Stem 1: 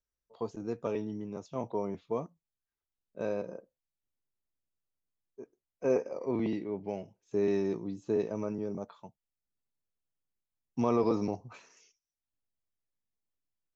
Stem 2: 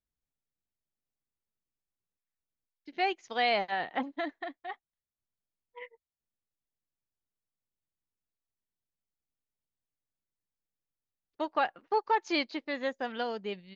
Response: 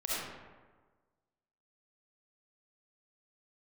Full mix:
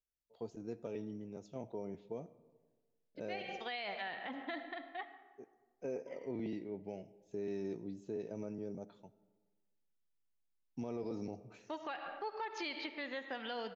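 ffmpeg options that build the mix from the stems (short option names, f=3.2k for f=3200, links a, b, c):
-filter_complex "[0:a]equalizer=f=1.1k:t=o:w=0.4:g=-13.5,volume=-7.5dB,asplit=3[a][b][c];[b]volume=-23.5dB[d];[1:a]lowpass=4.2k,adynamicequalizer=threshold=0.00708:dfrequency=1700:dqfactor=0.7:tfrequency=1700:tqfactor=0.7:attack=5:release=100:ratio=0.375:range=4:mode=boostabove:tftype=highshelf,adelay=300,volume=-5dB,asplit=2[e][f];[f]volume=-16dB[g];[c]apad=whole_len=619640[h];[e][h]sidechaincompress=threshold=-49dB:ratio=8:attack=16:release=342[i];[2:a]atrim=start_sample=2205[j];[d][g]amix=inputs=2:normalize=0[k];[k][j]afir=irnorm=-1:irlink=0[l];[a][i][l]amix=inputs=3:normalize=0,alimiter=level_in=8dB:limit=-24dB:level=0:latency=1:release=142,volume=-8dB"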